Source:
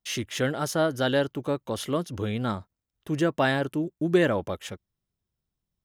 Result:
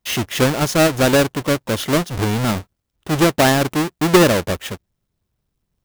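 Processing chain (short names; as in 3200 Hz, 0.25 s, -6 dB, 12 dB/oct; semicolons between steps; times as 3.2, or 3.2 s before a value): half-waves squared off; gain +5.5 dB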